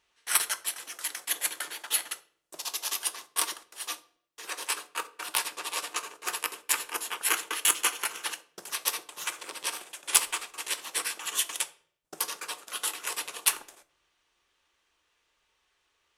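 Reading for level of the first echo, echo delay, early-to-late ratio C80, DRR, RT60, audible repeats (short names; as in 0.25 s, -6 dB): none, none, 22.5 dB, 11.0 dB, 0.55 s, none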